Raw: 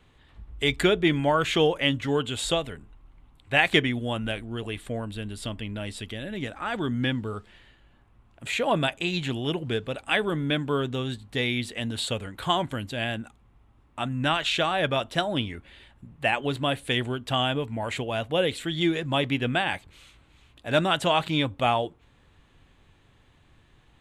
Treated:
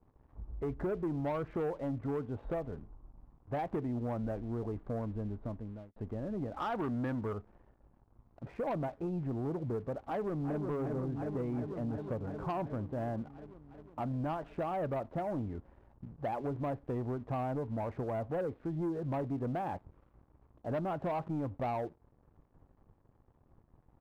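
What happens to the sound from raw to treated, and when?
0:05.27–0:05.96: fade out
0:06.57–0:07.33: parametric band 1,800 Hz +13.5 dB 2.8 octaves
0:10.04–0:10.64: delay throw 360 ms, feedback 75%, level −6 dB
whole clip: low-pass filter 1,000 Hz 24 dB per octave; downward compressor 2.5 to 1, threshold −31 dBFS; leveller curve on the samples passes 2; level −8.5 dB

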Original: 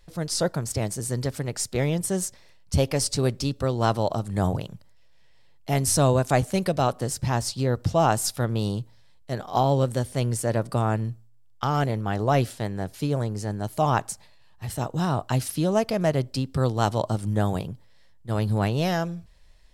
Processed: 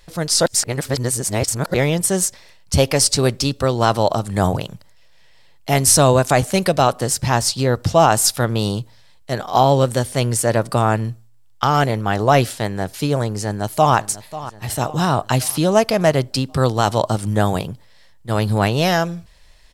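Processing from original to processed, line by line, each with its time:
0:00.46–0:01.74: reverse
0:13.34–0:13.95: delay throw 540 ms, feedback 55%, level −15.5 dB
whole clip: low-shelf EQ 500 Hz −6.5 dB; boost into a limiter +12 dB; level −1 dB

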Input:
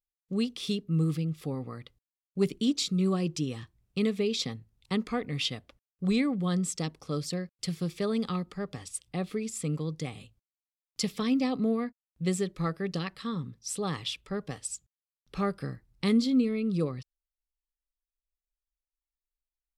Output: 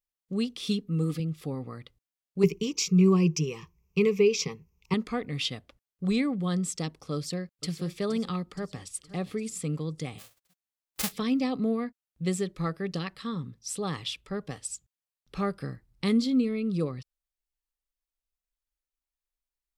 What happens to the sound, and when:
0:00.65–0:01.20: comb filter 4.1 ms
0:02.43–0:04.94: EQ curve with evenly spaced ripples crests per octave 0.78, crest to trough 17 dB
0:07.15–0:07.71: delay throw 470 ms, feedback 55%, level −12 dB
0:08.45–0:09.07: delay throw 520 ms, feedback 20%, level −16 dB
0:10.18–0:11.11: spectral envelope flattened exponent 0.1

